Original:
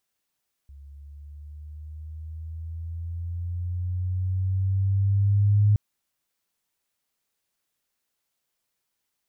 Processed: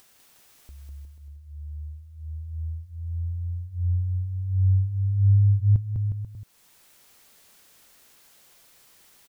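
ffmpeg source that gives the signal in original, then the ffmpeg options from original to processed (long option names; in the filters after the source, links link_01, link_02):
-f lavfi -i "aevalsrc='pow(10,(-15+27.5*(t/5.07-1))/20)*sin(2*PI*69.7*5.07/(7*log(2)/12)*(exp(7*log(2)/12*t/5.07)-1))':duration=5.07:sample_rate=44100"
-filter_complex "[0:a]acompressor=mode=upward:threshold=-40dB:ratio=2.5,asplit=2[link_01][link_02];[link_02]aecho=0:1:200|360|488|590.4|672.3:0.631|0.398|0.251|0.158|0.1[link_03];[link_01][link_03]amix=inputs=2:normalize=0"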